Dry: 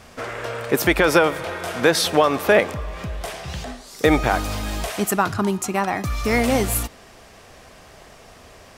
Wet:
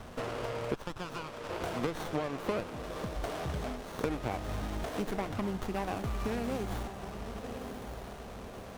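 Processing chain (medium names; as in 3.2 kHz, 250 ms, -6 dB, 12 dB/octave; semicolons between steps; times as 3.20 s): compression 6:1, threshold -32 dBFS, peak gain reduction 19.5 dB; 0.74–1.50 s: brick-wall FIR band-pass 860–7800 Hz; 2.68–3.16 s: comb of notches 1.5 kHz; on a send: echo that smears into a reverb 1074 ms, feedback 40%, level -7.5 dB; on the sum: sliding maximum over 17 samples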